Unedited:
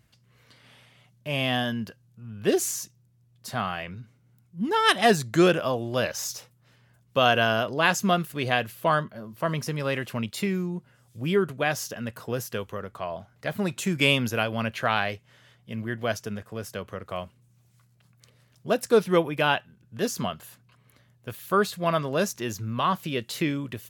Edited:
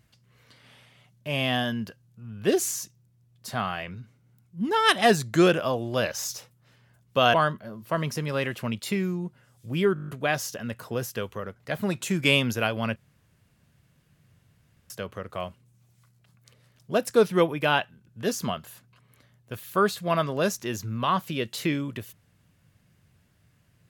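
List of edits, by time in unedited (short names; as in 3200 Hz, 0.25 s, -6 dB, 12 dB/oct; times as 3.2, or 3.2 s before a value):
7.34–8.85 cut
11.45 stutter 0.02 s, 8 plays
12.93–13.32 cut
14.72–16.66 room tone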